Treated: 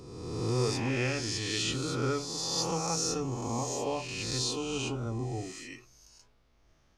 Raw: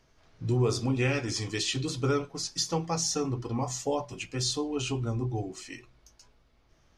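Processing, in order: reverse spectral sustain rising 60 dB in 1.53 s; trim -5.5 dB

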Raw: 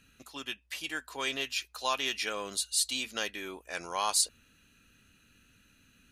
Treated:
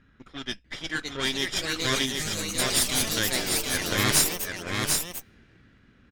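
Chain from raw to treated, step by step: comb filter that takes the minimum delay 0.57 ms; level-controlled noise filter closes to 1.8 kHz, open at -30.5 dBFS; ever faster or slower copies 644 ms, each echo +3 st, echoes 3; time-frequency box 2.05–2.59 s, 290–5800 Hz -10 dB; on a send: delay 745 ms -4 dB; on the sum: trim +6 dB

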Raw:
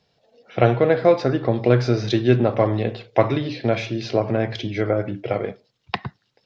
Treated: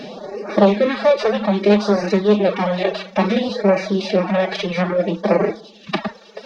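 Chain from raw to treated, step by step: spectral levelling over time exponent 0.4; de-hum 134.9 Hz, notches 36; formant-preserving pitch shift +9 st; LFO notch sine 0.6 Hz 240–3400 Hz; reverb removal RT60 1.4 s; loudspeaker Doppler distortion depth 0.12 ms; trim +1 dB

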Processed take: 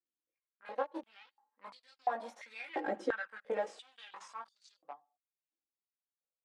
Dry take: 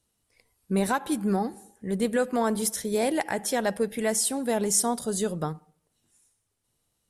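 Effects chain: Doppler pass-by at 3.03 s, 19 m/s, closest 1.3 m; treble shelf 4.2 kHz +3.5 dB; comb 3.7 ms, depth 75%; waveshaping leveller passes 3; chorus voices 2, 0.29 Hz, delay 20 ms, depth 1.9 ms; compression 12:1, threshold -43 dBFS, peak gain reduction 25.5 dB; tempo 1.1×; tape spacing loss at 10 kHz 38 dB; step-sequenced high-pass 2.9 Hz 350–4600 Hz; trim +13 dB

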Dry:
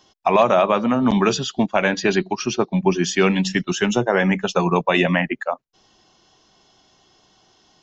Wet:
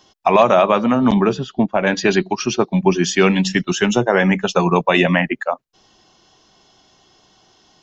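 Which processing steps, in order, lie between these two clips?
1.14–1.87 s: low-pass 1 kHz 6 dB/octave; trim +3 dB

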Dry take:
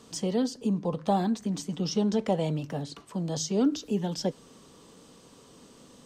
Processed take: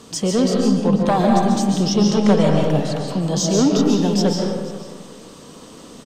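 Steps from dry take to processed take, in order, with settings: sine folder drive 5 dB, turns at -12.5 dBFS; on a send: delay 489 ms -18.5 dB; on the sum: algorithmic reverb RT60 1.4 s, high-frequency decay 0.6×, pre-delay 100 ms, DRR -0.5 dB; trim +1 dB

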